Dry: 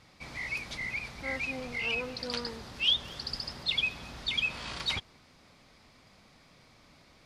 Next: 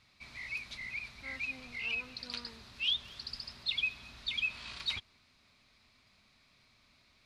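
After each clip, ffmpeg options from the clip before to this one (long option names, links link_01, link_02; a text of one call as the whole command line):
ffmpeg -i in.wav -af "equalizer=frequency=160:width_type=o:width=0.33:gain=-8,equalizer=frequency=315:width_type=o:width=0.33:gain=-7,equalizer=frequency=500:width_type=o:width=0.33:gain=-10,equalizer=frequency=800:width_type=o:width=0.33:gain=-6,equalizer=frequency=2500:width_type=o:width=0.33:gain=6,equalizer=frequency=4000:width_type=o:width=0.33:gain=7,volume=-8.5dB" out.wav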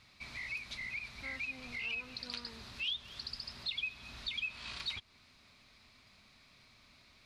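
ffmpeg -i in.wav -af "acompressor=threshold=-46dB:ratio=2,volume=4dB" out.wav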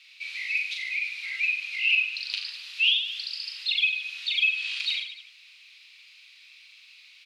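ffmpeg -i in.wav -filter_complex "[0:a]highpass=frequency=2700:width_type=q:width=3.8,asplit=2[link_01][link_02];[link_02]aecho=0:1:40|88|145.6|214.7|297.7:0.631|0.398|0.251|0.158|0.1[link_03];[link_01][link_03]amix=inputs=2:normalize=0,volume=4dB" out.wav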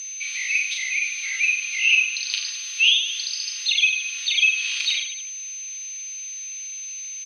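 ffmpeg -i in.wav -af "aeval=exprs='val(0)+0.0158*sin(2*PI*6200*n/s)':channel_layout=same,aresample=32000,aresample=44100,volume=5dB" out.wav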